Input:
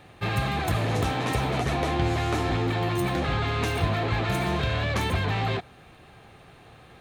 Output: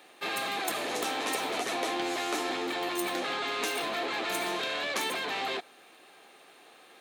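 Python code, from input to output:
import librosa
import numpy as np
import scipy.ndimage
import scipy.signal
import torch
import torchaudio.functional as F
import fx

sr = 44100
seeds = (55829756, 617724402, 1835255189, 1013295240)

y = scipy.signal.sosfilt(scipy.signal.butter(4, 280.0, 'highpass', fs=sr, output='sos'), x)
y = fx.high_shelf(y, sr, hz=3400.0, db=10.0)
y = y * librosa.db_to_amplitude(-4.5)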